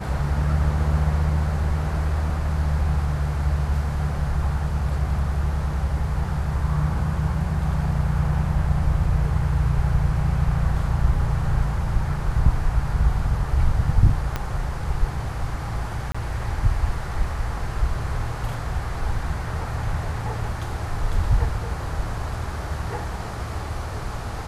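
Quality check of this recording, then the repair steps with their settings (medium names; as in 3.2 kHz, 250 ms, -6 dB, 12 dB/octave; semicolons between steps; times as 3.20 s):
14.36 s: pop -11 dBFS
16.12–16.14 s: dropout 25 ms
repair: de-click; interpolate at 16.12 s, 25 ms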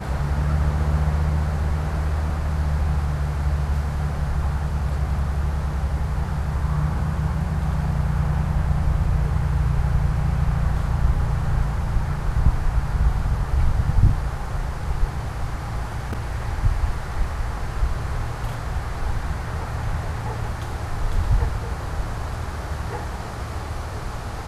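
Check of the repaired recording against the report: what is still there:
14.36 s: pop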